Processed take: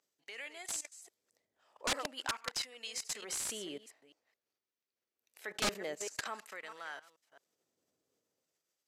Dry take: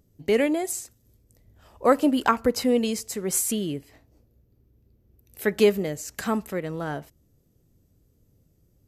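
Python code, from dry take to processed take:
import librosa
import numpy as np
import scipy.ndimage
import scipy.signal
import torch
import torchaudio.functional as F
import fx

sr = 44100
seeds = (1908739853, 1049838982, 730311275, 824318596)

y = fx.reverse_delay(x, sr, ms=217, wet_db=-13.0)
y = fx.level_steps(y, sr, step_db=17)
y = fx.filter_lfo_highpass(y, sr, shape='sine', hz=0.47, low_hz=570.0, high_hz=1600.0, q=0.71)
y = (np.mod(10.0 ** (25.5 / 20.0) * y + 1.0, 2.0) - 1.0) / 10.0 ** (25.5 / 20.0)
y = scipy.signal.sosfilt(scipy.signal.butter(2, 7600.0, 'lowpass', fs=sr, output='sos'), y)
y = F.gain(torch.from_numpy(y), 1.0).numpy()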